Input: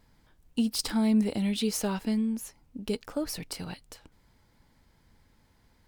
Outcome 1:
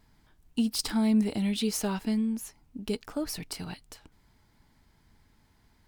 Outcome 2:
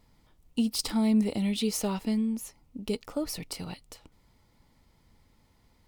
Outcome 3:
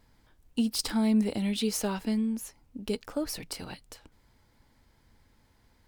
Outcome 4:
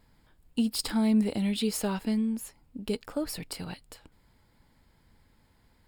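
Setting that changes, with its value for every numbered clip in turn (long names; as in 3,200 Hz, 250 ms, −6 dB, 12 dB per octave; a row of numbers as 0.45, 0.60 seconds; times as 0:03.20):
notch filter, centre frequency: 520, 1,600, 170, 6,000 Hertz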